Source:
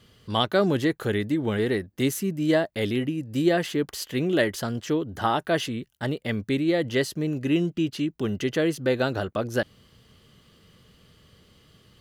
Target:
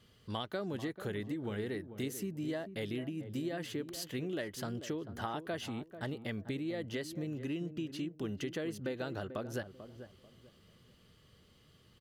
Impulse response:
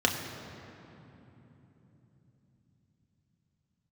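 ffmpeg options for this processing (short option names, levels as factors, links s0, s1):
-filter_complex "[0:a]acompressor=threshold=0.0447:ratio=6,asplit=2[s0][s1];[s1]adelay=441,lowpass=f=840:p=1,volume=0.316,asplit=2[s2][s3];[s3]adelay=441,lowpass=f=840:p=1,volume=0.3,asplit=2[s4][s5];[s5]adelay=441,lowpass=f=840:p=1,volume=0.3[s6];[s2][s4][s6]amix=inputs=3:normalize=0[s7];[s0][s7]amix=inputs=2:normalize=0,volume=0.398"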